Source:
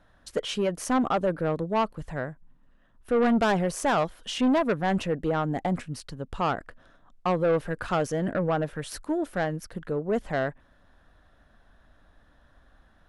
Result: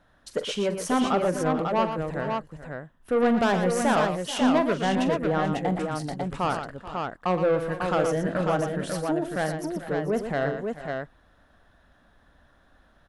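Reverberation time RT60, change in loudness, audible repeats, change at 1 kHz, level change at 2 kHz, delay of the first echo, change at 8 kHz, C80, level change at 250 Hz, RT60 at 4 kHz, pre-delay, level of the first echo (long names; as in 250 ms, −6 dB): no reverb audible, +1.5 dB, 4, +2.0 dB, +2.0 dB, 44 ms, +2.0 dB, no reverb audible, +1.5 dB, no reverb audible, no reverb audible, −12.5 dB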